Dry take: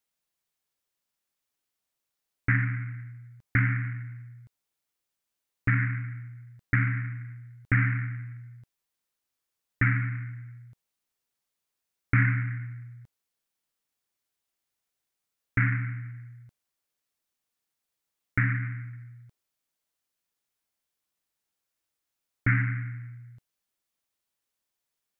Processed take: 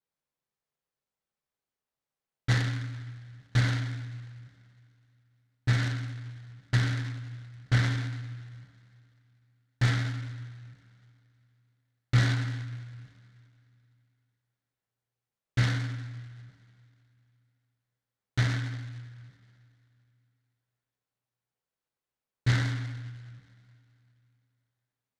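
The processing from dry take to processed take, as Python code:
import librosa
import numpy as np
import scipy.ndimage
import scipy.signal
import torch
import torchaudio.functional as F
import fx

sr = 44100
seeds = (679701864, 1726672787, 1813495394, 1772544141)

y = fx.high_shelf(x, sr, hz=2500.0, db=-11.0)
y = fx.rev_double_slope(y, sr, seeds[0], early_s=0.45, late_s=2.8, knee_db=-21, drr_db=-4.5)
y = fx.noise_mod_delay(y, sr, seeds[1], noise_hz=1800.0, depth_ms=0.066)
y = y * 10.0 ** (-6.5 / 20.0)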